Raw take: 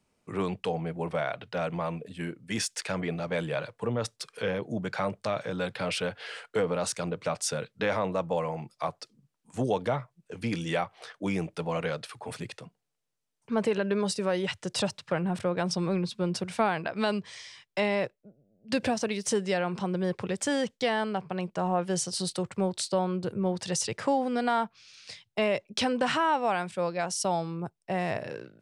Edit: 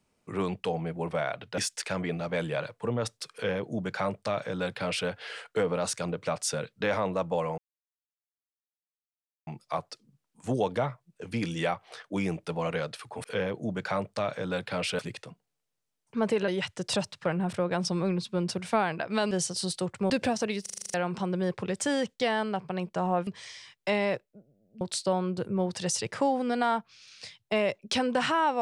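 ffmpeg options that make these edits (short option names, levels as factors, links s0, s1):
-filter_complex "[0:a]asplit=18[s0][s1][s2][s3][s4][s5][s6][s7][s8][s9][s10][s11][s12][s13][s14][s15][s16][s17];[s0]atrim=end=1.582[s18];[s1]atrim=start=2.568:end=8.57,asetpts=PTS-STARTPTS,afade=t=out:st=5.998:d=0.004:c=hsin,apad=pad_dur=1.89[s19];[s2]atrim=start=8.57:end=12.342,asetpts=PTS-STARTPTS,afade=t=in:d=0.004:c=hsin[s20];[s3]atrim=start=4.318:end=6.072[s21];[s4]atrim=start=12.338:end=13.832[s22];[s5]atrim=start=14.338:end=17.172[s23];[s6]atrim=start=21.878:end=22.672[s24];[s7]atrim=start=18.708:end=19.272[s25];[s8]atrim=start=19.228:end=19.272[s26];[s9]atrim=start=19.228:end=19.272[s27];[s10]atrim=start=19.228:end=19.272[s28];[s11]atrim=start=19.228:end=19.272[s29];[s12]atrim=start=19.228:end=19.272[s30];[s13]atrim=start=19.228:end=19.272[s31];[s14]atrim=start=19.228:end=19.272[s32];[s15]atrim=start=19.548:end=21.882[s33];[s16]atrim=start=17.168:end=18.712[s34];[s17]atrim=start=22.668[s35];[s19][s20]concat=n=2:v=0:a=1[s36];[s18][s36]acrossfade=d=0.004:c1=hsin:c2=hsin[s37];[s37][s21]acrossfade=d=0.004:c1=hsin:c2=hsin[s38];[s38][s22]acrossfade=d=0.004:c1=hsin:c2=hsin[s39];[s39][s23]acrossfade=d=0.004:c1=hsin:c2=hsin[s40];[s40][s24]acrossfade=d=0.004:c1=hsin:c2=hsin[s41];[s41][s25]acrossfade=d=0.004:c1=hsin:c2=hsin[s42];[s42][s26]acrossfade=d=0.004:c1=hsin:c2=hsin[s43];[s43][s27]acrossfade=d=0.004:c1=hsin:c2=hsin[s44];[s44][s28]acrossfade=d=0.004:c1=hsin:c2=hsin[s45];[s45][s29]acrossfade=d=0.004:c1=hsin:c2=hsin[s46];[s46][s30]acrossfade=d=0.004:c1=hsin:c2=hsin[s47];[s47][s31]acrossfade=d=0.004:c1=hsin:c2=hsin[s48];[s48][s32]acrossfade=d=0.004:c1=hsin:c2=hsin[s49];[s49][s33]acrossfade=d=0.004:c1=hsin:c2=hsin[s50];[s50][s34]acrossfade=d=0.004:c1=hsin:c2=hsin[s51];[s51][s35]acrossfade=d=0.004:c1=hsin:c2=hsin"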